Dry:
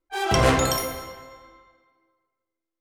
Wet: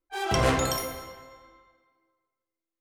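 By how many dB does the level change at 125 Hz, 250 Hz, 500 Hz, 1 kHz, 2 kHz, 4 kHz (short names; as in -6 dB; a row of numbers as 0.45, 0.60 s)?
-4.5, -4.5, -4.5, -4.5, -4.5, -4.5 dB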